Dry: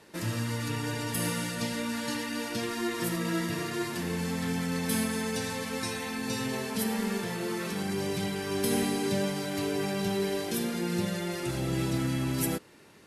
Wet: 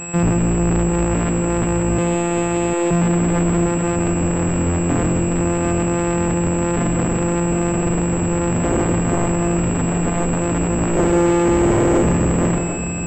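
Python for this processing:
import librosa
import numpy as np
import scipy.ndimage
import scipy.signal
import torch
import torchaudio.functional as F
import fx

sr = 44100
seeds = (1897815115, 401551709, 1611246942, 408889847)

y = np.r_[np.sort(x[:len(x) // 256 * 256].reshape(-1, 256), axis=1).ravel(), x[len(x) // 256 * 256:]]
y = fx.bessel_highpass(y, sr, hz=420.0, order=8, at=(1.98, 2.91))
y = fx.comb(y, sr, ms=2.3, depth=0.59, at=(10.96, 12.03))
y = y + 10.0 ** (-53.0 / 20.0) * np.sin(2.0 * np.pi * 2600.0 * np.arange(len(y)) / sr)
y = fx.fold_sine(y, sr, drive_db=17, ceiling_db=-14.0)
y = fx.air_absorb(y, sr, metres=400.0)
y = fx.echo_multitap(y, sr, ms=(160, 751), db=(-9.5, -8.5))
y = fx.pwm(y, sr, carrier_hz=7700.0)
y = y * librosa.db_to_amplitude(2.5)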